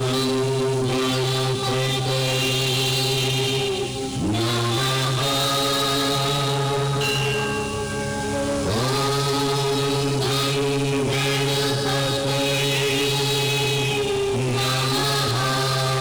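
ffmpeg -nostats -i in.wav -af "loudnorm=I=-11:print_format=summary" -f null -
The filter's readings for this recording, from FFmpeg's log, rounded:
Input Integrated:    -21.2 LUFS
Input True Peak:     -17.7 dBTP
Input LRA:             1.1 LU
Input Threshold:     -31.2 LUFS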